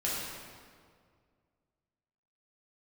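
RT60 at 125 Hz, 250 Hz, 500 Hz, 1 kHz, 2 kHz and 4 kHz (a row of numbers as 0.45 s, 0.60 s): 2.5 s, 2.2 s, 2.1 s, 1.9 s, 1.6 s, 1.4 s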